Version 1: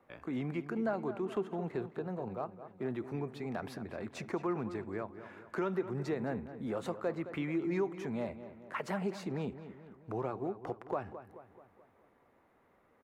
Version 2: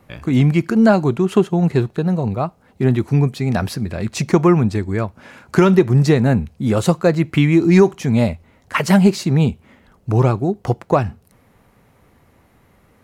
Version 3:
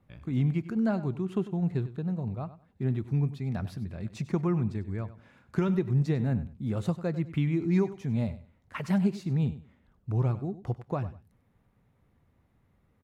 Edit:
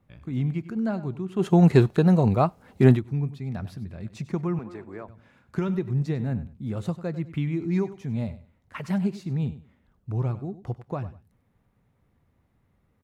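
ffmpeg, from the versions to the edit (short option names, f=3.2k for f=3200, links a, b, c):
-filter_complex "[2:a]asplit=3[a][b][c];[a]atrim=end=1.48[d];[1:a]atrim=start=1.38:end=3.01[e];[b]atrim=start=2.91:end=4.592[f];[0:a]atrim=start=4.588:end=5.082[g];[c]atrim=start=5.078[h];[d][e]acrossfade=d=0.1:c1=tri:c2=tri[i];[i][f]acrossfade=d=0.1:c1=tri:c2=tri[j];[j][g]acrossfade=d=0.004:c1=hsin:c2=hsin[k];[k][h]acrossfade=d=0.004:c1=hsin:c2=hsin"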